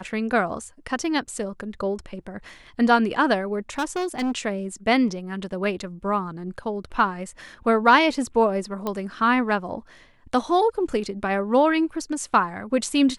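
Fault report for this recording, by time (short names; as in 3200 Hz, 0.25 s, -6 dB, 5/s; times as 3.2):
3.78–4.32 clipped -21.5 dBFS
8.87 pop -14 dBFS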